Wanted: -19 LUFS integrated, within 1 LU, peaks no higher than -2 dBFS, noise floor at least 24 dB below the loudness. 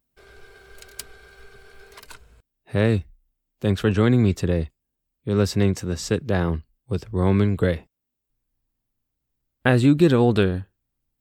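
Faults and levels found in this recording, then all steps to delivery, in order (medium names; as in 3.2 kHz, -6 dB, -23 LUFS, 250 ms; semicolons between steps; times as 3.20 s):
loudness -21.5 LUFS; peak level -5.5 dBFS; loudness target -19.0 LUFS
-> trim +2.5 dB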